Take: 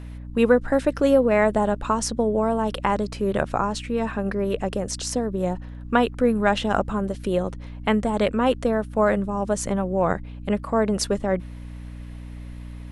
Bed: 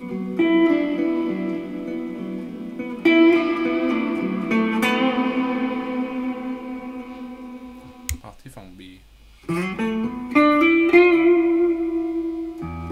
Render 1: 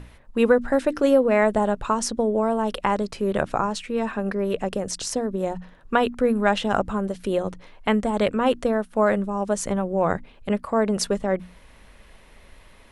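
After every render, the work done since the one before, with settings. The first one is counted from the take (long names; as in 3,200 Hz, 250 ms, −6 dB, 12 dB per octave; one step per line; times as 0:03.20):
mains-hum notches 60/120/180/240/300 Hz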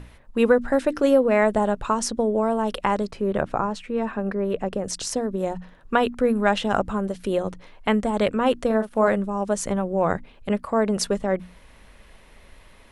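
0:03.11–0:04.84: high-shelf EQ 2,900 Hz −10 dB
0:08.66–0:09.08: double-tracking delay 41 ms −8 dB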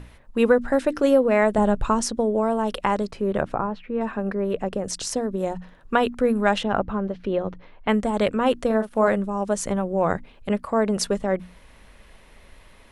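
0:01.58–0:02.01: low-shelf EQ 190 Hz +10.5 dB
0:03.54–0:04.01: high-frequency loss of the air 350 metres
0:06.63–0:07.89: high-frequency loss of the air 240 metres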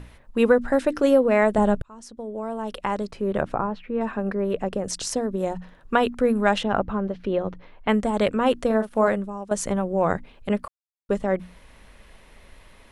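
0:01.82–0:03.49: fade in
0:09.00–0:09.51: fade out, to −13 dB
0:10.68–0:11.09: silence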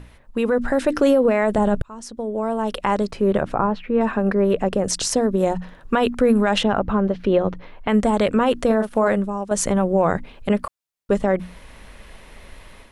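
brickwall limiter −15.5 dBFS, peak gain reduction 10.5 dB
automatic gain control gain up to 7 dB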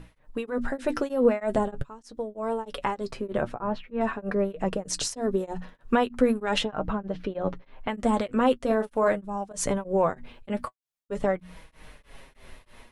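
flanger 0.43 Hz, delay 6.1 ms, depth 2.4 ms, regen +42%
tremolo along a rectified sine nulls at 3.2 Hz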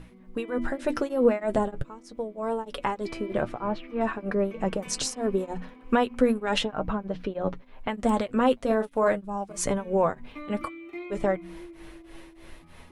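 mix in bed −25.5 dB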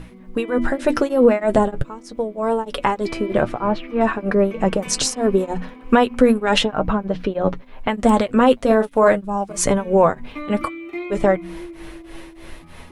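level +9 dB
brickwall limiter −3 dBFS, peak gain reduction 3 dB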